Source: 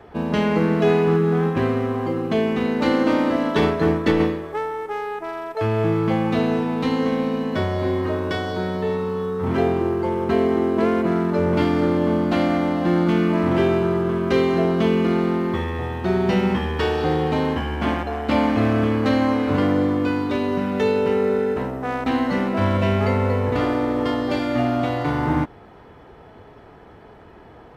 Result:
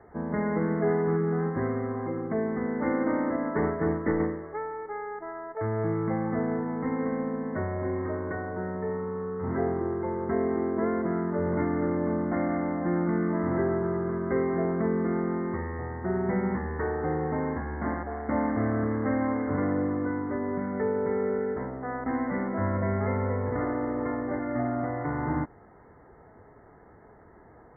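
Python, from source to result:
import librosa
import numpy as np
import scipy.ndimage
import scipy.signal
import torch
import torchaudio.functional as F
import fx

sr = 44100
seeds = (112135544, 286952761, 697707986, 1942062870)

y = fx.brickwall_lowpass(x, sr, high_hz=2200.0)
y = F.gain(torch.from_numpy(y), -8.0).numpy()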